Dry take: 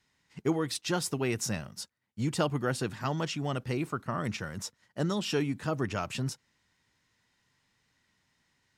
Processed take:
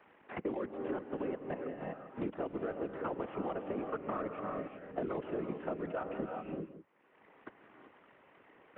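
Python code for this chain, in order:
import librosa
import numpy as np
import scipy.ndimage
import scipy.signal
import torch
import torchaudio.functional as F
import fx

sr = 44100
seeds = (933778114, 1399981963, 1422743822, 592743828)

y = fx.cvsd(x, sr, bps=16000)
y = scipy.signal.sosfilt(scipy.signal.butter(4, 320.0, 'highpass', fs=sr, output='sos'), y)
y = fx.dereverb_blind(y, sr, rt60_s=0.54)
y = fx.lowpass(y, sr, hz=1400.0, slope=6)
y = fx.tilt_eq(y, sr, slope=-3.0)
y = fx.level_steps(y, sr, step_db=19)
y = fx.whisperise(y, sr, seeds[0])
y = y + 10.0 ** (-17.0 / 20.0) * np.pad(y, (int(165 * sr / 1000.0), 0))[:len(y)]
y = fx.rev_gated(y, sr, seeds[1], gate_ms=410, shape='rising', drr_db=5.5)
y = fx.band_squash(y, sr, depth_pct=100)
y = y * 10.0 ** (1.5 / 20.0)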